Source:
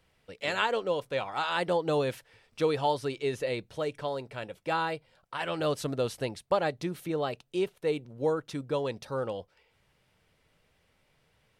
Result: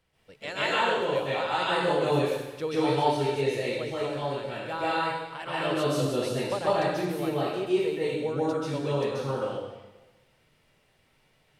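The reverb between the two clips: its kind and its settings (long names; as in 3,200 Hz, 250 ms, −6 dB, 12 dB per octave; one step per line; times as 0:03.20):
dense smooth reverb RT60 1.1 s, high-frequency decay 1×, pre-delay 120 ms, DRR −9 dB
level −5.5 dB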